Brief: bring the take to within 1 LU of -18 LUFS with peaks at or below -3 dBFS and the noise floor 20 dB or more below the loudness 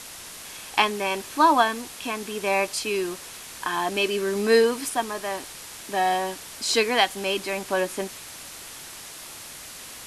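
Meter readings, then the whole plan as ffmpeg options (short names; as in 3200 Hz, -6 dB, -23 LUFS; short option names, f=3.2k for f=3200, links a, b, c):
noise floor -41 dBFS; noise floor target -45 dBFS; loudness -24.5 LUFS; peak -4.5 dBFS; loudness target -18.0 LUFS
-> -af "afftdn=nr=6:nf=-41"
-af "volume=6.5dB,alimiter=limit=-3dB:level=0:latency=1"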